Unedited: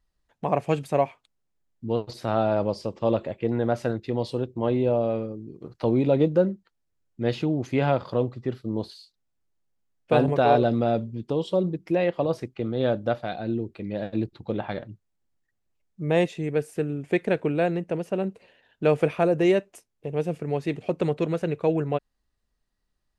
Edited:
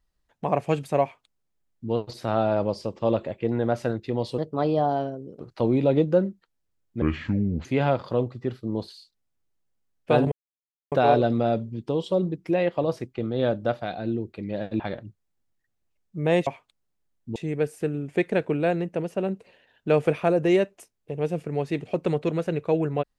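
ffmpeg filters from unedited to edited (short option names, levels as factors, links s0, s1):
-filter_complex "[0:a]asplit=9[s0][s1][s2][s3][s4][s5][s6][s7][s8];[s0]atrim=end=4.384[s9];[s1]atrim=start=4.38:end=5.63,asetpts=PTS-STARTPTS,asetrate=54243,aresample=44100,atrim=end_sample=44817,asetpts=PTS-STARTPTS[s10];[s2]atrim=start=5.626:end=7.254[s11];[s3]atrim=start=7.25:end=7.66,asetpts=PTS-STARTPTS,asetrate=28665,aresample=44100[s12];[s4]atrim=start=7.656:end=10.33,asetpts=PTS-STARTPTS,afade=t=out:st=2.67:d=0.004:c=hsin,apad=pad_dur=0.6[s13];[s5]atrim=start=10.33:end=14.212,asetpts=PTS-STARTPTS,afade=t=in:d=0.004:c=hsin[s14];[s6]atrim=start=14.638:end=16.312[s15];[s7]atrim=start=1.018:end=1.912[s16];[s8]atrim=start=16.308[s17];[s9][s10]acrossfade=d=0.004:c1=hsin:c2=hsin[s18];[s18][s11]acrossfade=d=0.004:c1=hsin:c2=hsin[s19];[s19][s12]acrossfade=d=0.004:c1=hsin:c2=hsin[s20];[s13][s14]concat=n=2:v=0:a=1[s21];[s20][s21]acrossfade=d=0.004:c1=hsin:c2=hsin[s22];[s22][s15]acrossfade=d=0.004:c1=hsin:c2=hsin[s23];[s23][s16]acrossfade=d=0.004:c1=hsin:c2=hsin[s24];[s24][s17]acrossfade=d=0.004:c1=hsin:c2=hsin"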